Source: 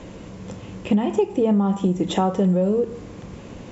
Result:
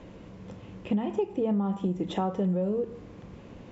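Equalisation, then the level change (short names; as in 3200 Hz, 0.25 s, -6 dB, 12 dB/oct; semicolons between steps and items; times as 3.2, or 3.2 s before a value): air absorption 110 m; -8.0 dB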